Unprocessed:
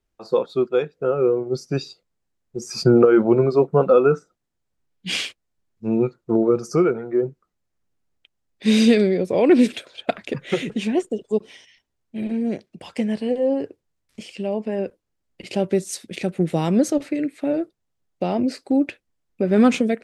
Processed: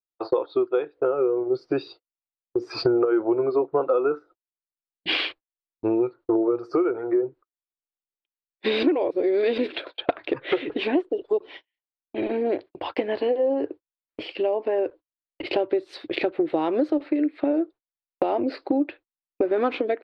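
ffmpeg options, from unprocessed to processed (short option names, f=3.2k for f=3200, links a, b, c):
-filter_complex "[0:a]asplit=3[a][b][c];[a]atrim=end=8.832[d];[b]atrim=start=8.828:end=9.582,asetpts=PTS-STARTPTS,areverse[e];[c]atrim=start=9.578[f];[d][e]acrossfade=d=0.004:c1=hsin:c2=hsin[g];[g][f]acrossfade=d=0.004:c1=hsin:c2=hsin,agate=range=-37dB:threshold=-41dB:ratio=16:detection=peak,firequalizer=gain_entry='entry(120,0);entry(190,-20);entry(300,14);entry(440,9);entry(920,13);entry(2000,6);entry(4300,3);entry(6400,-26)':delay=0.05:min_phase=1,acompressor=threshold=-21dB:ratio=5"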